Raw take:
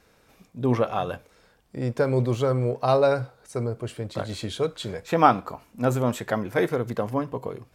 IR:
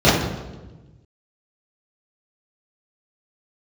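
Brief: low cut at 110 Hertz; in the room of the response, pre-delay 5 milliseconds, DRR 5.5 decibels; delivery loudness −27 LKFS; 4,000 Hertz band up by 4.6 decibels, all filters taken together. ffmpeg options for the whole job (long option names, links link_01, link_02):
-filter_complex "[0:a]highpass=110,equalizer=frequency=4000:width_type=o:gain=5.5,asplit=2[link_01][link_02];[1:a]atrim=start_sample=2205,adelay=5[link_03];[link_02][link_03]afir=irnorm=-1:irlink=0,volume=-31.5dB[link_04];[link_01][link_04]amix=inputs=2:normalize=0,volume=-3.5dB"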